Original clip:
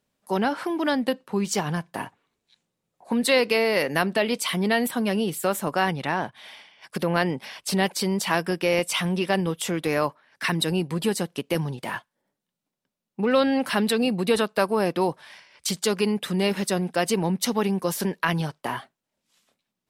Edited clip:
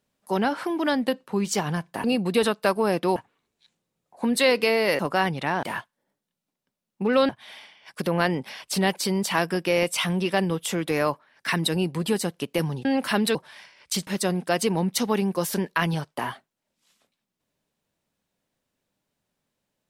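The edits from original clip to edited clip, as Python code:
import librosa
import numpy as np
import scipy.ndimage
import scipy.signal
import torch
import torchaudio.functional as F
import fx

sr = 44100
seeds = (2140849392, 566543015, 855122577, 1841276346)

y = fx.edit(x, sr, fx.cut(start_s=3.87, length_s=1.74),
    fx.move(start_s=11.81, length_s=1.66, to_s=6.25),
    fx.move(start_s=13.97, length_s=1.12, to_s=2.04),
    fx.cut(start_s=15.81, length_s=0.73), tone=tone)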